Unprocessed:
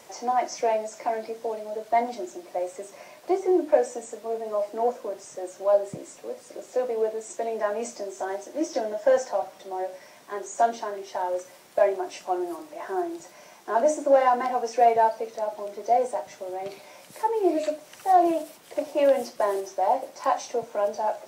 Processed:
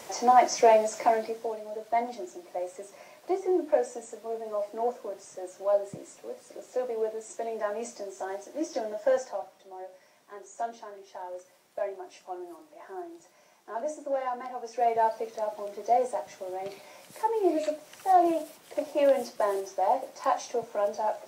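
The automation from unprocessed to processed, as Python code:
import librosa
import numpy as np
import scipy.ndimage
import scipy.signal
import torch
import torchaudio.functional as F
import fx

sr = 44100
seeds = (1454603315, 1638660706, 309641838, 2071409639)

y = fx.gain(x, sr, db=fx.line((1.03, 5.0), (1.58, -4.5), (9.12, -4.5), (9.61, -11.5), (14.55, -11.5), (15.15, -2.5)))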